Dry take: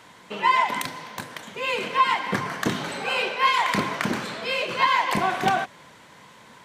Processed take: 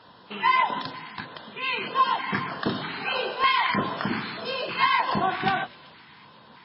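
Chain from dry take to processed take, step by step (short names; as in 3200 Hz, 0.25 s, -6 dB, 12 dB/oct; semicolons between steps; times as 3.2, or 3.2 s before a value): 1.23–3.65 low shelf 120 Hz -3 dB; notches 60/120/180/240/300/360/420/480/540/600 Hz; LFO notch square 1.6 Hz 560–2200 Hz; thin delay 0.126 s, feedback 77%, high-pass 3000 Hz, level -17 dB; MP3 16 kbps 12000 Hz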